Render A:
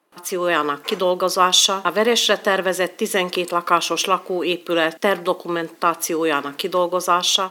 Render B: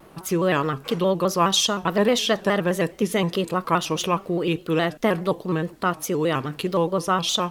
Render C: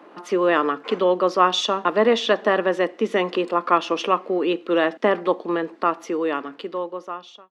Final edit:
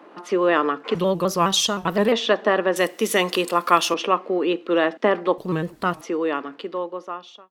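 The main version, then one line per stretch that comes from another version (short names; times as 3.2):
C
0.95–2.12 from B
2.76–3.94 from A
5.38–6.01 from B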